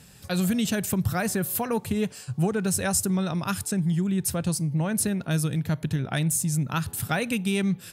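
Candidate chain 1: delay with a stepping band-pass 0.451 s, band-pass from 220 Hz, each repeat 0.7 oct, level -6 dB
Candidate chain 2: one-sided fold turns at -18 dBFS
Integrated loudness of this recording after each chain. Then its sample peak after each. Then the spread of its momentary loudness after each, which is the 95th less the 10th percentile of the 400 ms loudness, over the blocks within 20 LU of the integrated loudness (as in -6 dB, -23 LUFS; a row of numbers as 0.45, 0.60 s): -25.5, -26.0 LUFS; -12.5, -12.5 dBFS; 3, 4 LU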